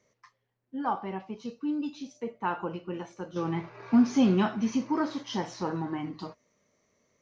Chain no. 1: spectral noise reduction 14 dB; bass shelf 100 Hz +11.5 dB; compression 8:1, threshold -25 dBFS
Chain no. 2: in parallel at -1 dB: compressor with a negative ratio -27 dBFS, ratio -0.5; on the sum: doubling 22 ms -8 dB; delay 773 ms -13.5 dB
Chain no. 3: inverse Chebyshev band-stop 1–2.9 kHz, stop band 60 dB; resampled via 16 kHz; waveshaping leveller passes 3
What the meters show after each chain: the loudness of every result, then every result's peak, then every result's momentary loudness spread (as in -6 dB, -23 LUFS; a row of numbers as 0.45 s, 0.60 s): -33.0 LUFS, -26.0 LUFS, -24.5 LUFS; -18.5 dBFS, -9.5 dBFS, -13.5 dBFS; 8 LU, 13 LU, 11 LU